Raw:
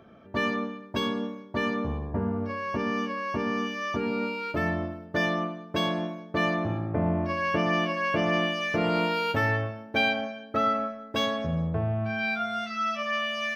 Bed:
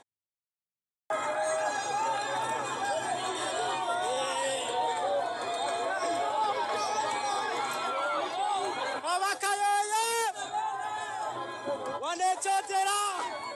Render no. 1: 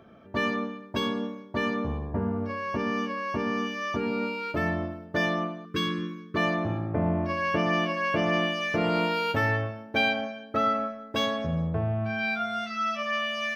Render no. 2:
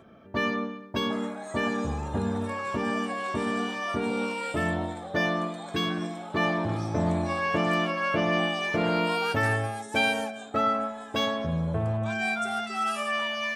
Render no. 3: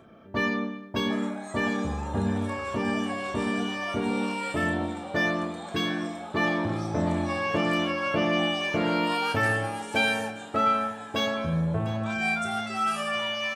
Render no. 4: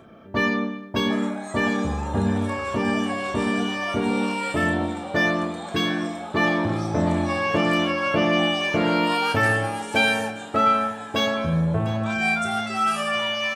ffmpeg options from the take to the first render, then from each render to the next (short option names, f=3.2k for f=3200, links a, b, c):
-filter_complex "[0:a]asettb=1/sr,asplit=3[a][b][c];[a]atrim=end=5.654[d];[b]atrim=start=5.65:end=6.36,asetpts=PTS-STARTPTS,afade=t=in:d=0.004:c=qsin,afade=t=out:st=0.706:d=0.004:c=qsin,asuperstop=centerf=720:order=8:qfactor=1.2[e];[c]atrim=start=6.356[f];[d][e]acrossfade=d=0.004:c1=hsin:c2=qsin[g];[g][f]acrossfade=d=0.004:c1=qsin:c2=hsin"
-filter_complex "[1:a]volume=-10.5dB[a];[0:a][a]amix=inputs=2:normalize=0"
-filter_complex "[0:a]asplit=2[a][b];[b]adelay=31,volume=-7.5dB[c];[a][c]amix=inputs=2:normalize=0,aecho=1:1:702|1404|2106|2808:0.15|0.0673|0.0303|0.0136"
-af "volume=4.5dB"